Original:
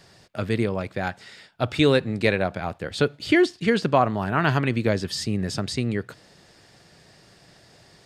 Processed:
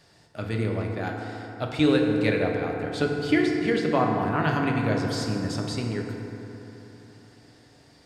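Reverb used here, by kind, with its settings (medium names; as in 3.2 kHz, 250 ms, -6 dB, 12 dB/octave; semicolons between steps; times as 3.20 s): FDN reverb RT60 3.6 s, high-frequency decay 0.4×, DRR 0.5 dB; trim -6 dB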